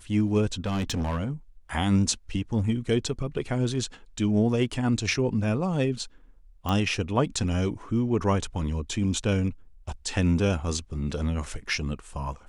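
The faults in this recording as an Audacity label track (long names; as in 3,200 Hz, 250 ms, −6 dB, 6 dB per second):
0.660000	1.310000	clipping −24.5 dBFS
6.690000	6.690000	click −14 dBFS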